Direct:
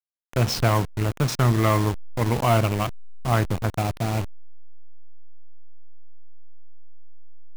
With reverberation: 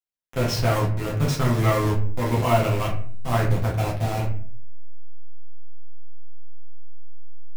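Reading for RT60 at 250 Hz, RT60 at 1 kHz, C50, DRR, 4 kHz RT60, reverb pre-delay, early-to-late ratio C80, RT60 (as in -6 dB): 0.75 s, 0.45 s, 7.0 dB, -5.0 dB, 0.30 s, 8 ms, 11.5 dB, 0.50 s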